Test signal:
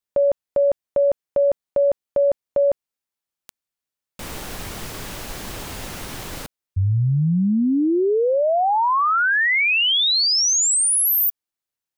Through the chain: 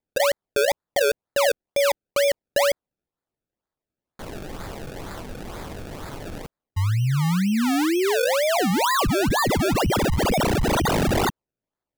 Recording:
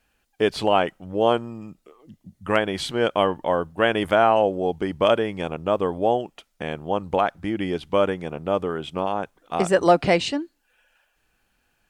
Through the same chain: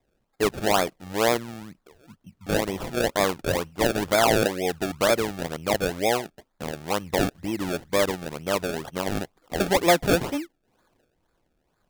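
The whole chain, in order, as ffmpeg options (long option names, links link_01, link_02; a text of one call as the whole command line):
ffmpeg -i in.wav -af "acrusher=samples=30:mix=1:aa=0.000001:lfo=1:lforange=30:lforate=2.1,volume=-2.5dB" out.wav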